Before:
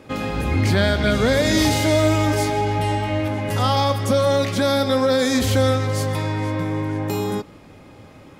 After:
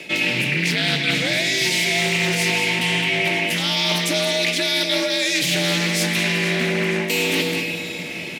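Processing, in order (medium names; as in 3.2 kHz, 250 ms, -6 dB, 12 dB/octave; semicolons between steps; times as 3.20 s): frequency shift +69 Hz; resonant high shelf 1.7 kHz +11 dB, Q 3; on a send: delay 210 ms -12.5 dB; on the sum: Schroeder reverb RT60 2.9 s, combs from 27 ms, DRR 11.5 dB; reverse; compression 12:1, threshold -25 dBFS, peak gain reduction 19.5 dB; reverse; loudspeaker Doppler distortion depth 0.24 ms; trim +8 dB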